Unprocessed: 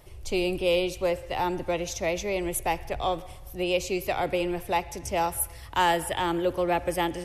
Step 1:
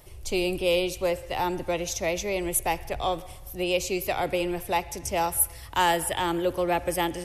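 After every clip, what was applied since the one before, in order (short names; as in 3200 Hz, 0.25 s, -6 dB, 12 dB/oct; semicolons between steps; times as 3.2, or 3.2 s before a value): high shelf 5900 Hz +7 dB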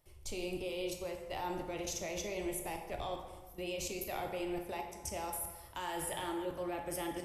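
level quantiser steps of 17 dB; plate-style reverb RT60 1.3 s, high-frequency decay 0.55×, DRR 2.5 dB; gain -6.5 dB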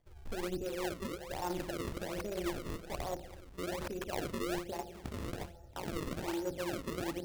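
Wiener smoothing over 41 samples; decimation with a swept rate 32×, swing 160% 1.2 Hz; gain +3.5 dB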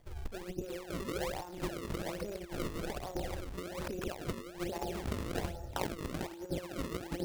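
negative-ratio compressor -43 dBFS, ratio -0.5; gain +5.5 dB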